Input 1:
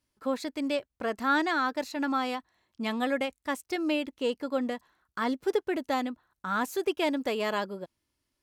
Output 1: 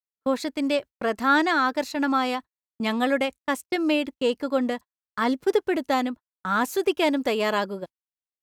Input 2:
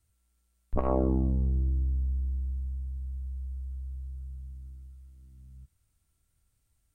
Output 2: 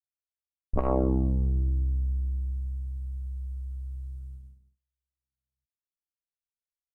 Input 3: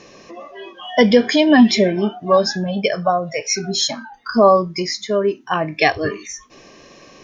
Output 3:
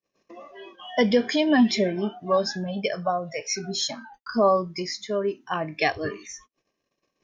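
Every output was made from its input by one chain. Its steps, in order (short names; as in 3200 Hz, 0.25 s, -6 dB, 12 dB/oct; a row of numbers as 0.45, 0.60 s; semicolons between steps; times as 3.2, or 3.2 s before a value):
gate -40 dBFS, range -44 dB; normalise peaks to -9 dBFS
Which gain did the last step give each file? +5.5, +1.5, -8.0 dB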